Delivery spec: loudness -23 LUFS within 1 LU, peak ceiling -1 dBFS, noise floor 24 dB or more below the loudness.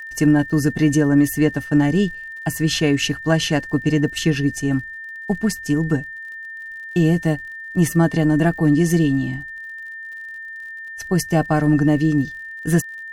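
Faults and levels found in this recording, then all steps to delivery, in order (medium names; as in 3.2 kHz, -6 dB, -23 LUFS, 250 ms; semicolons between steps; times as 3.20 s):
tick rate 54 per s; steady tone 1.8 kHz; tone level -31 dBFS; loudness -19.5 LUFS; peak level -4.0 dBFS; loudness target -23.0 LUFS
-> de-click; band-stop 1.8 kHz, Q 30; trim -3.5 dB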